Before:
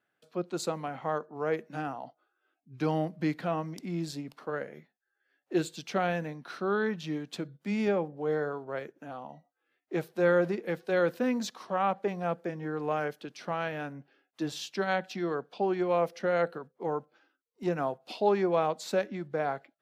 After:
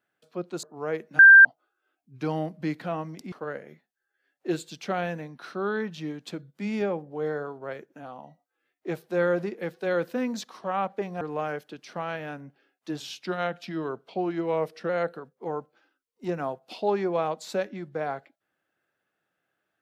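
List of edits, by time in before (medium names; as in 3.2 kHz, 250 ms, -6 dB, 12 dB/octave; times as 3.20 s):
0.63–1.22 s: delete
1.78–2.04 s: bleep 1.58 kHz -7.5 dBFS
3.91–4.38 s: delete
12.27–12.73 s: delete
14.52–16.28 s: speed 93%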